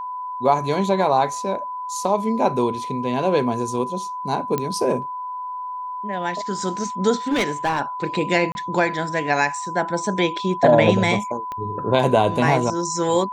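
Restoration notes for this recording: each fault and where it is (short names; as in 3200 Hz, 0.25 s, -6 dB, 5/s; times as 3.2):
tone 1000 Hz -27 dBFS
4.58 pop -9 dBFS
7.28–7.81 clipped -16 dBFS
8.52–8.55 gap 31 ms
11.52 pop -18 dBFS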